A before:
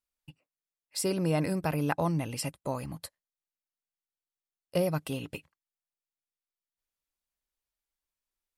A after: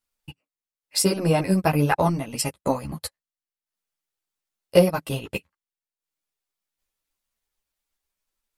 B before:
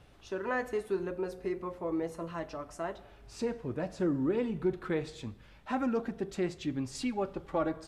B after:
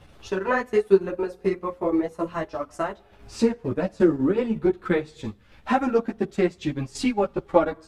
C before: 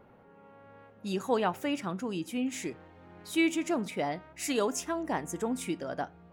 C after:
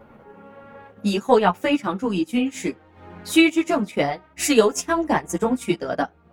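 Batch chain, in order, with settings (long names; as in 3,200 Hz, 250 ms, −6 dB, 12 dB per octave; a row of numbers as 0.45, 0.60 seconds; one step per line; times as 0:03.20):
transient designer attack +5 dB, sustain −10 dB
string-ensemble chorus
normalise the peak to −3 dBFS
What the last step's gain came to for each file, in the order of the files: +10.5, +11.5, +13.0 decibels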